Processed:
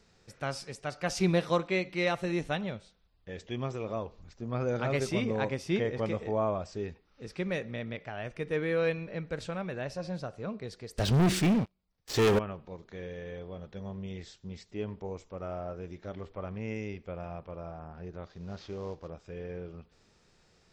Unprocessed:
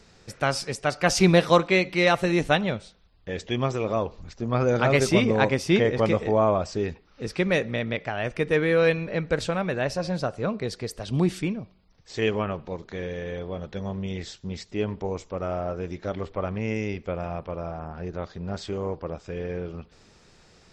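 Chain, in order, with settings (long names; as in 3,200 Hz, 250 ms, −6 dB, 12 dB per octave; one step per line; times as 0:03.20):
0:18.30–0:19.08: variable-slope delta modulation 32 kbit/s
harmonic and percussive parts rebalanced percussive −4 dB
0:10.98–0:12.39: leveller curve on the samples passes 5
level −8 dB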